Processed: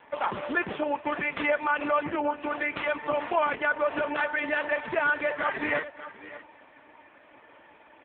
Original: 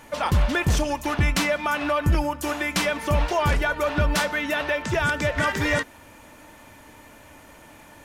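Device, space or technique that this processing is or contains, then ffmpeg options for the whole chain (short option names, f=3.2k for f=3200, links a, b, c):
satellite phone: -af "highpass=310,lowpass=3.1k,aecho=1:1:589:0.178" -ar 8000 -c:a libopencore_amrnb -b:a 4750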